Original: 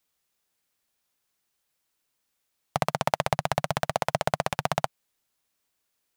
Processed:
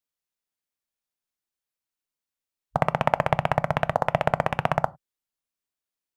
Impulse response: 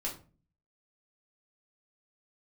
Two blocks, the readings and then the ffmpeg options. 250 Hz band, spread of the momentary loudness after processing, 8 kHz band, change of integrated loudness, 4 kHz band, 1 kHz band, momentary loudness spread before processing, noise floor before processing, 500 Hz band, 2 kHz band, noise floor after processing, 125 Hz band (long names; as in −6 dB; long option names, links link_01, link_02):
+4.0 dB, 4 LU, below −10 dB, +3.5 dB, −5.0 dB, +3.5 dB, 4 LU, −78 dBFS, +4.0 dB, +3.0 dB, below −85 dBFS, +4.5 dB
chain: -filter_complex "[0:a]afwtdn=0.0178,asplit=2[link_01][link_02];[link_02]lowshelf=frequency=380:gain=8.5[link_03];[1:a]atrim=start_sample=2205,afade=type=out:start_time=0.16:duration=0.01,atrim=end_sample=7497[link_04];[link_03][link_04]afir=irnorm=-1:irlink=0,volume=-19.5dB[link_05];[link_01][link_05]amix=inputs=2:normalize=0,volume=3dB"